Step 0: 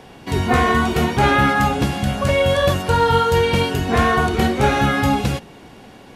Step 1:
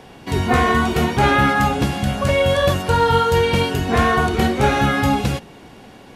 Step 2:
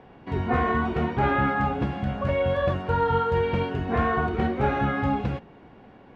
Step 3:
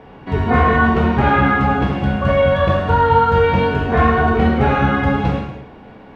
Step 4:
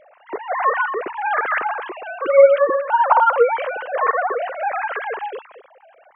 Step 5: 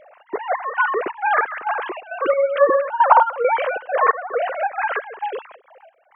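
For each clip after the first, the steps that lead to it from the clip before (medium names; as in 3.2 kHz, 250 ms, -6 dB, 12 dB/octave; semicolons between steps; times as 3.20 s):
no audible change
low-pass 1.9 kHz 12 dB/octave; trim -7 dB
gated-style reverb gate 320 ms falling, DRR -0.5 dB; trim +7 dB
formants replaced by sine waves; trim -4 dB
trance gate "xx.xx..x" 135 bpm -12 dB; trim +2.5 dB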